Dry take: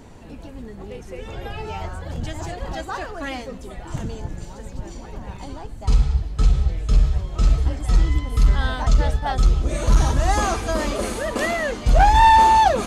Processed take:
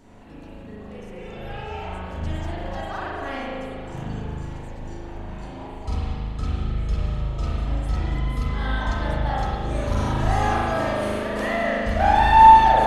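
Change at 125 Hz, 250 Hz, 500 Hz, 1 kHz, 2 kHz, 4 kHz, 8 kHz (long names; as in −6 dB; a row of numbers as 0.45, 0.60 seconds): −4.0, 0.0, −0.5, +1.0, −0.5, −4.0, −12.0 decibels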